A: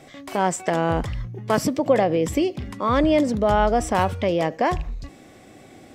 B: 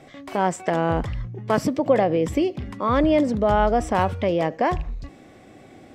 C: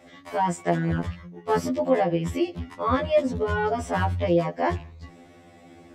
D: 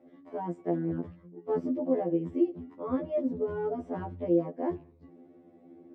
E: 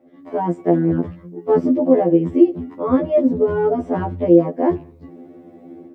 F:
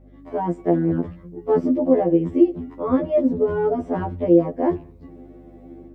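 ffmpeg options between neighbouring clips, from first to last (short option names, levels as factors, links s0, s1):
-af "highshelf=f=4600:g=-9"
-af "afftfilt=real='re*2*eq(mod(b,4),0)':imag='im*2*eq(mod(b,4),0)':win_size=2048:overlap=0.75"
-af "bandpass=f=320:t=q:w=2.1:csg=0"
-af "dynaudnorm=f=130:g=3:m=3.16,volume=1.58"
-af "aeval=exprs='val(0)+0.00562*(sin(2*PI*50*n/s)+sin(2*PI*2*50*n/s)/2+sin(2*PI*3*50*n/s)/3+sin(2*PI*4*50*n/s)/4+sin(2*PI*5*50*n/s)/5)':c=same,volume=0.708"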